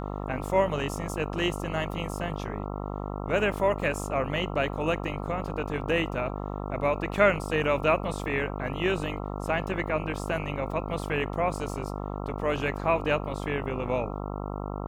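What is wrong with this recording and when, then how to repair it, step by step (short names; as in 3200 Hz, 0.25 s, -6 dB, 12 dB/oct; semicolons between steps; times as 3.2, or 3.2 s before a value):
buzz 50 Hz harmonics 27 -34 dBFS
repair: de-hum 50 Hz, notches 27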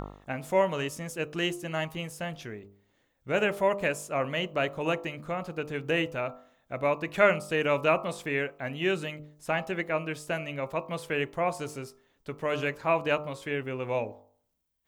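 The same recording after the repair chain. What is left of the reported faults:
none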